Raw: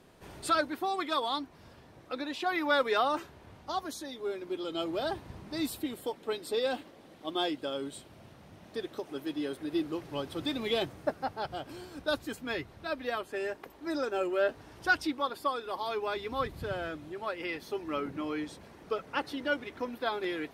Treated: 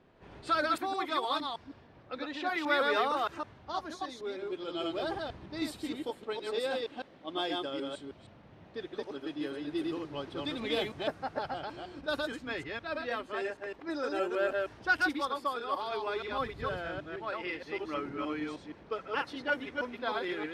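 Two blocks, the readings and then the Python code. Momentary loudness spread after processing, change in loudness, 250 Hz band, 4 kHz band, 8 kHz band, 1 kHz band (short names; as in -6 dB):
11 LU, -1.0 dB, -1.5 dB, -1.0 dB, -6.0 dB, 0.0 dB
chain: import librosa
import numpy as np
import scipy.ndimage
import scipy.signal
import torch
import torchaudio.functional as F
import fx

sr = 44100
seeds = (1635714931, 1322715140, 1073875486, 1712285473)

y = fx.reverse_delay(x, sr, ms=156, wet_db=-2.0)
y = fx.dynamic_eq(y, sr, hz=1700.0, q=0.8, threshold_db=-43.0, ratio=4.0, max_db=3)
y = fx.env_lowpass(y, sr, base_hz=2900.0, full_db=-23.0)
y = y * 10.0 ** (-4.0 / 20.0)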